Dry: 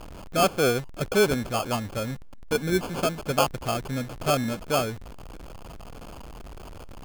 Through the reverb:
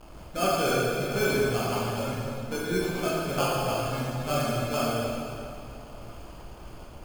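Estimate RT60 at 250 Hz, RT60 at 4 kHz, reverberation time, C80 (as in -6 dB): 2.7 s, 2.2 s, 2.6 s, -1.0 dB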